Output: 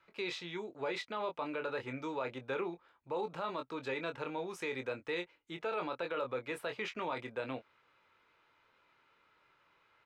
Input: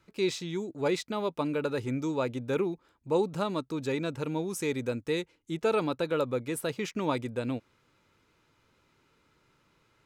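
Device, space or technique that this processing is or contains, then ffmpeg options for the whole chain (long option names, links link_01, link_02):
DJ mixer with the lows and highs turned down: -filter_complex "[0:a]acrossover=split=520 3700:gain=0.158 1 0.1[link_01][link_02][link_03];[link_01][link_02][link_03]amix=inputs=3:normalize=0,asplit=2[link_04][link_05];[link_05]adelay=23,volume=-8dB[link_06];[link_04][link_06]amix=inputs=2:normalize=0,alimiter=level_in=5dB:limit=-24dB:level=0:latency=1:release=27,volume=-5dB,volume=1dB"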